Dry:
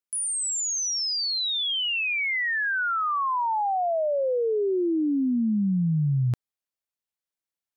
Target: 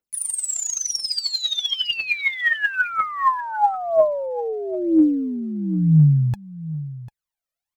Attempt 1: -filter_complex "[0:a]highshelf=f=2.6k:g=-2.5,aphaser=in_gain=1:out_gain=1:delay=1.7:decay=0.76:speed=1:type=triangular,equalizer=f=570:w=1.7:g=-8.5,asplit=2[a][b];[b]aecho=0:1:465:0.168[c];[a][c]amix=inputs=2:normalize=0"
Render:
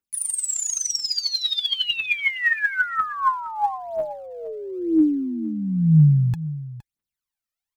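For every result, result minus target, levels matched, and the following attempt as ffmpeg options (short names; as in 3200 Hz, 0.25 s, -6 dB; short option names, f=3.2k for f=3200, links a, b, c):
echo 0.281 s early; 500 Hz band -7.0 dB
-filter_complex "[0:a]highshelf=f=2.6k:g=-2.5,aphaser=in_gain=1:out_gain=1:delay=1.7:decay=0.76:speed=1:type=triangular,equalizer=f=570:w=1.7:g=-8.5,asplit=2[a][b];[b]aecho=0:1:746:0.168[c];[a][c]amix=inputs=2:normalize=0"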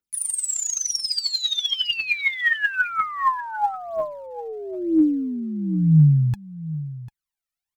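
500 Hz band -7.0 dB
-filter_complex "[0:a]highshelf=f=2.6k:g=-2.5,aphaser=in_gain=1:out_gain=1:delay=1.7:decay=0.76:speed=1:type=triangular,equalizer=f=570:w=1.7:g=3,asplit=2[a][b];[b]aecho=0:1:746:0.168[c];[a][c]amix=inputs=2:normalize=0"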